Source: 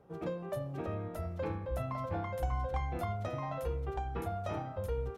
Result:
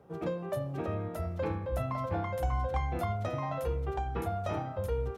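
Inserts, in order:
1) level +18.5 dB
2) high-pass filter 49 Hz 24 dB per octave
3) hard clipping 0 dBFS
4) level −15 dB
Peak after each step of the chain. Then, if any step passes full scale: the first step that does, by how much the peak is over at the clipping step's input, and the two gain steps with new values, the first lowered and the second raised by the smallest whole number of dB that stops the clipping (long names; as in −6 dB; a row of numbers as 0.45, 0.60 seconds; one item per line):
−3.5, −4.0, −4.0, −19.0 dBFS
no step passes full scale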